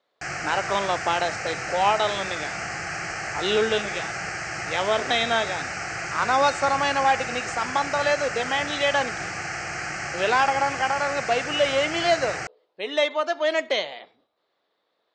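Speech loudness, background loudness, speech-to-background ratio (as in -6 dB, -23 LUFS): -24.5 LUFS, -30.0 LUFS, 5.5 dB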